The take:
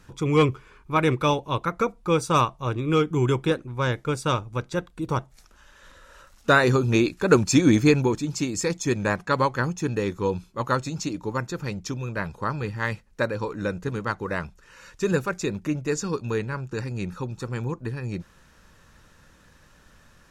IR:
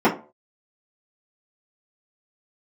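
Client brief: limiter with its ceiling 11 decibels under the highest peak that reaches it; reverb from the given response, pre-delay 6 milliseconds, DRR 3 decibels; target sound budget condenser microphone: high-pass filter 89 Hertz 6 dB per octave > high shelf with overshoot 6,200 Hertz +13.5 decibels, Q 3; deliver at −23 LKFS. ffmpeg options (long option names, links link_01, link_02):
-filter_complex "[0:a]alimiter=limit=-15.5dB:level=0:latency=1,asplit=2[link_01][link_02];[1:a]atrim=start_sample=2205,adelay=6[link_03];[link_02][link_03]afir=irnorm=-1:irlink=0,volume=-24dB[link_04];[link_01][link_04]amix=inputs=2:normalize=0,highpass=frequency=89:poles=1,highshelf=frequency=6200:width_type=q:width=3:gain=13.5,volume=1dB"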